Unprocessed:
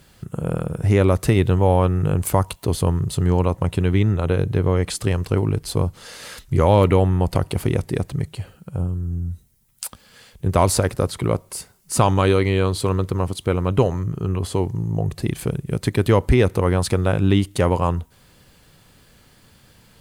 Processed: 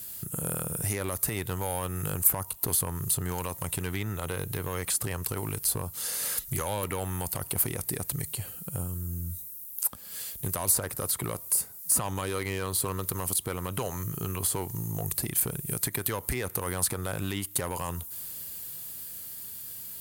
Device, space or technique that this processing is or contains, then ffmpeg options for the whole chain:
FM broadcast chain: -filter_complex "[0:a]highpass=f=50:p=1,dynaudnorm=f=220:g=17:m=6dB,acrossover=split=830|1900[a][b][c];[a]acompressor=threshold=-27dB:ratio=4[d];[b]acompressor=threshold=-28dB:ratio=4[e];[c]acompressor=threshold=-43dB:ratio=4[f];[d][e][f]amix=inputs=3:normalize=0,aemphasis=mode=production:type=50fm,alimiter=limit=-16dB:level=0:latency=1:release=51,asoftclip=type=hard:threshold=-19.5dB,lowpass=f=15k:w=0.5412,lowpass=f=15k:w=1.3066,aemphasis=mode=production:type=50fm,volume=-4dB"

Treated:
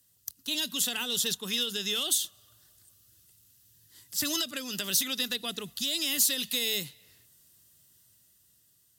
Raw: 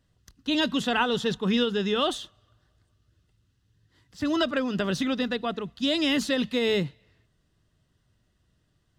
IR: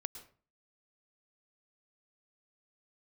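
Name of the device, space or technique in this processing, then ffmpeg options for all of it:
FM broadcast chain: -filter_complex "[0:a]highpass=77,dynaudnorm=f=470:g=7:m=6dB,acrossover=split=490|2000[a][b][c];[a]acompressor=threshold=-29dB:ratio=4[d];[b]acompressor=threshold=-36dB:ratio=4[e];[c]acompressor=threshold=-26dB:ratio=4[f];[d][e][f]amix=inputs=3:normalize=0,aemphasis=mode=production:type=75fm,alimiter=limit=-16dB:level=0:latency=1:release=383,asoftclip=type=hard:threshold=-19dB,lowpass=f=15k:w=0.5412,lowpass=f=15k:w=1.3066,aemphasis=mode=production:type=75fm,volume=-7dB"

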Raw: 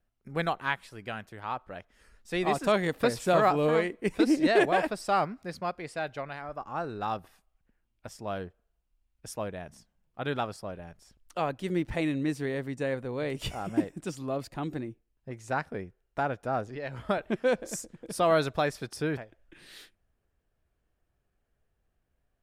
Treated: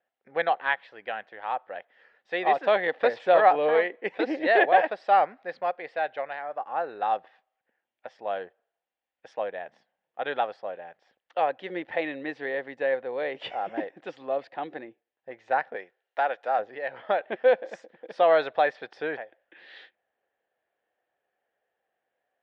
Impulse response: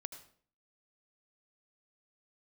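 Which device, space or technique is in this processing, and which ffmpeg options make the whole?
phone earpiece: -filter_complex "[0:a]asettb=1/sr,asplit=3[a][b][c];[a]atrim=end=15.764[d];[b]atrim=start=15.76:end=16.59,asetpts=PTS-STARTPTS,afade=t=in:d=0.004:c=qsin,afade=t=out:st=0.826:d=0.004:c=qsin,aemphasis=mode=production:type=riaa[e];[c]atrim=start=16.586[f];[d][e]acrossfade=d=0.004:c1=hsin:c2=qsin[g];[g][f]acrossfade=d=0.004:c1=qsin:c2=hsin,highpass=450,equalizer=f=520:t=q:w=4:g=8,equalizer=f=770:t=q:w=4:g=9,equalizer=f=1.2k:t=q:w=4:g=-3,equalizer=f=1.8k:t=q:w=4:g=8,equalizer=f=3.4k:t=q:w=4:g=3,lowpass=f=3.5k:w=0.5412,lowpass=f=3.5k:w=1.3066"

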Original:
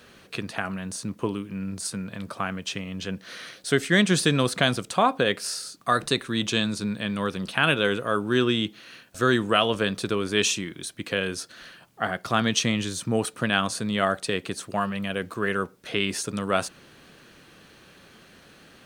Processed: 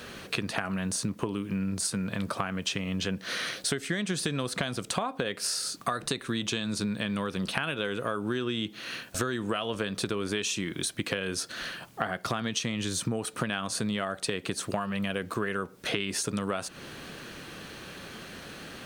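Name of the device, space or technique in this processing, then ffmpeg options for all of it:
serial compression, leveller first: -af "acompressor=threshold=-24dB:ratio=3,acompressor=threshold=-36dB:ratio=6,volume=8.5dB"

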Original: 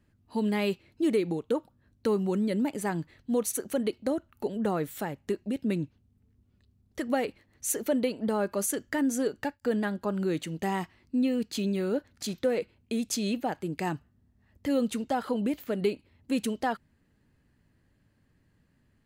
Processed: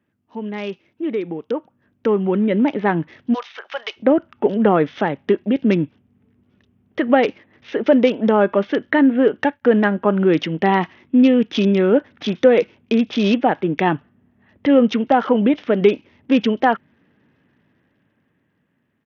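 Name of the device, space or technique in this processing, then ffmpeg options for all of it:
Bluetooth headset: -filter_complex "[0:a]asplit=3[a][b][c];[a]afade=t=out:st=3.33:d=0.02[d];[b]highpass=f=820:w=0.5412,highpass=f=820:w=1.3066,afade=t=in:st=3.33:d=0.02,afade=t=out:st=3.96:d=0.02[e];[c]afade=t=in:st=3.96:d=0.02[f];[d][e][f]amix=inputs=3:normalize=0,highpass=180,dynaudnorm=f=500:g=9:m=15.5dB,aresample=8000,aresample=44100,volume=1dB" -ar 48000 -c:a sbc -b:a 64k

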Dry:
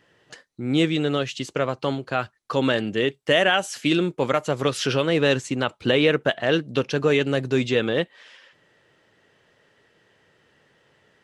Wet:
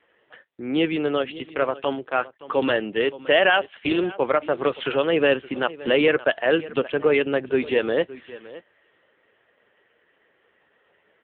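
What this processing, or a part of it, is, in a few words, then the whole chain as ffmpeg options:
satellite phone: -af "highpass=320,lowpass=3.2k,aecho=1:1:569:0.133,volume=3dB" -ar 8000 -c:a libopencore_amrnb -b:a 5900

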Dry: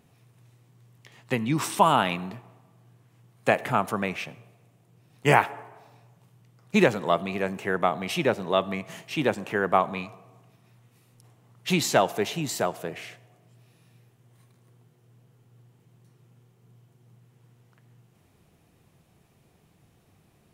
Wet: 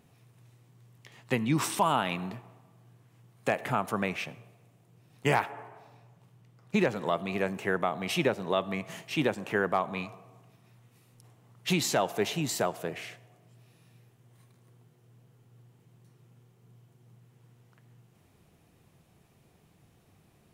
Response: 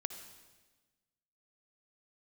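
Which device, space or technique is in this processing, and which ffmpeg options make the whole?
clipper into limiter: -filter_complex "[0:a]asoftclip=type=hard:threshold=-8dB,alimiter=limit=-14dB:level=0:latency=1:release=243,asettb=1/sr,asplit=3[a][b][c];[a]atrim=end=5.454[d];[b]atrim=start=5.45:end=6.96,asetpts=PTS-STARTPTS,afade=t=in:d=0.004:c=qsin,afade=t=out:st=1.506:d=0.004:c=qsin,highshelf=f=5.5k:g=-5.5[e];[c]atrim=start=6.956[f];[d][e]acrossfade=d=0.004:c1=hsin:c2=qsin[g];[g][f]acrossfade=d=0.004:c1=qsin:c2=hsin,volume=-1dB"

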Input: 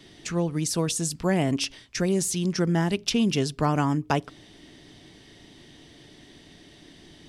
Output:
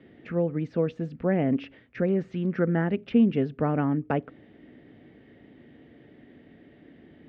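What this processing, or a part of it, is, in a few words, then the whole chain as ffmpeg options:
bass cabinet: -filter_complex "[0:a]asettb=1/sr,asplit=3[a][b][c];[a]atrim=end=2.074[d];[b]atrim=start=2.07:end=2.91,asetpts=PTS-STARTPTS,afade=t=in:d=0.004:c=qsin,afade=t=out:st=0.836:d=0.004:c=qsin,equalizer=f=1.4k:w=1.5:g=5.5[e];[c]atrim=start=2.906[f];[d][e]acrossfade=d=0.004:c1=hsin:c2=qsin[g];[g][f]acrossfade=d=0.004:c1=qsin:c2=hsin,highpass=62,equalizer=f=240:t=q:w=4:g=8,equalizer=f=500:t=q:w=4:g=8,equalizer=f=1k:t=q:w=4:g=-8,lowpass=f=2.2k:w=0.5412,lowpass=f=2.2k:w=1.3066,volume=-3dB"

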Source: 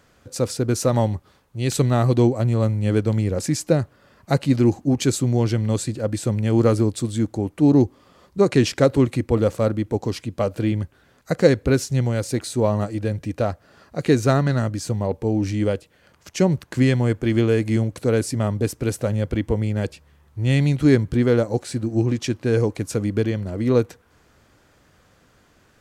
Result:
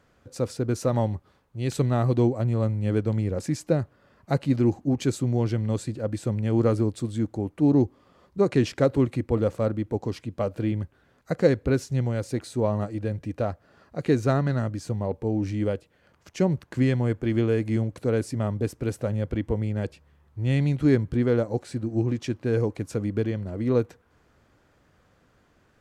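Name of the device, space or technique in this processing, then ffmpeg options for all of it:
behind a face mask: -af "highshelf=f=3.2k:g=-8,volume=-4.5dB"

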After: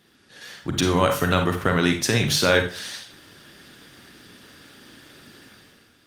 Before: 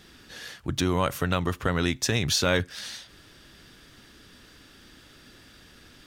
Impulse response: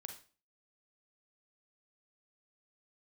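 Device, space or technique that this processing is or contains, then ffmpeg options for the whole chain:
far-field microphone of a smart speaker: -filter_complex "[0:a]asettb=1/sr,asplit=3[a][b][c];[a]atrim=end=1.964[d];[b]atrim=start=1.96:end=2.63,asetpts=PTS-STARTPTS,afade=t=in:d=0.004:c=qsin,afade=t=out:st=0.666:d=0.004:c=qsin,highpass=80[e];[c]atrim=start=2.626[f];[d][e]acrossfade=d=0.004:c1=hsin:c2=qsin[g];[g][f]acrossfade=d=0.004:c1=qsin:c2=hsin[h];[1:a]atrim=start_sample=2205[i];[h][i]afir=irnorm=-1:irlink=0,highpass=110,dynaudnorm=f=160:g=7:m=11.5dB" -ar 48000 -c:a libopus -b:a 32k

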